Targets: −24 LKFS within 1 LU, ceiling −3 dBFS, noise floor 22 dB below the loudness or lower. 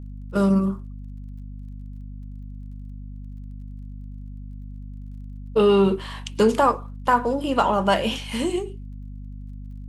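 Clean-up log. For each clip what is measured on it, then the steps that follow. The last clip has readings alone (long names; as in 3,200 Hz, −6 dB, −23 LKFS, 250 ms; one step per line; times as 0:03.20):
crackle rate 25 per second; mains hum 50 Hz; hum harmonics up to 250 Hz; level of the hum −34 dBFS; integrated loudness −21.5 LKFS; sample peak −6.0 dBFS; target loudness −24.0 LKFS
→ click removal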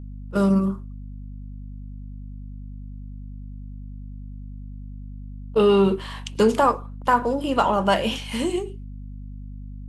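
crackle rate 0 per second; mains hum 50 Hz; hum harmonics up to 250 Hz; level of the hum −34 dBFS
→ hum removal 50 Hz, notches 5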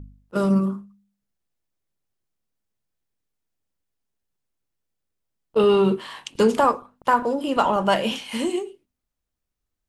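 mains hum none found; integrated loudness −22.0 LKFS; sample peak −6.5 dBFS; target loudness −24.0 LKFS
→ level −2 dB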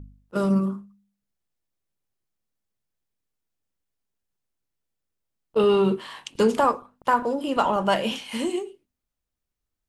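integrated loudness −24.0 LKFS; sample peak −8.5 dBFS; background noise floor −84 dBFS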